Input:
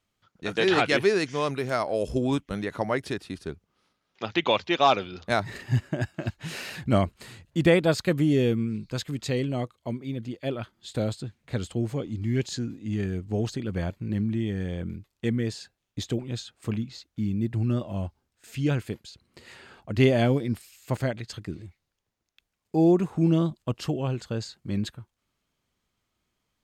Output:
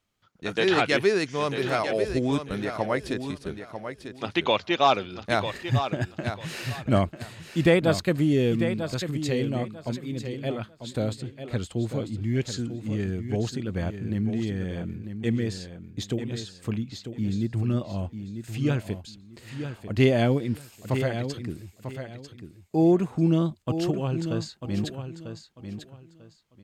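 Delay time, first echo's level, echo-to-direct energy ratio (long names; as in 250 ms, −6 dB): 945 ms, −9.0 dB, −9.0 dB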